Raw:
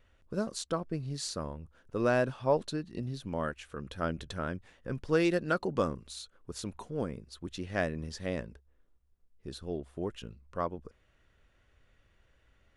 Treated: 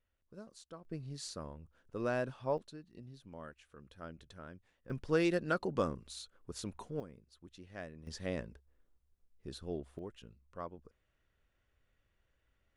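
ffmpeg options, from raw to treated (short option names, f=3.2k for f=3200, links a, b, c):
-af "asetnsamples=n=441:p=0,asendcmd='0.85 volume volume -7.5dB;2.58 volume volume -15dB;4.9 volume volume -3.5dB;7 volume volume -15dB;8.07 volume volume -3.5dB;9.99 volume volume -10.5dB',volume=-18dB"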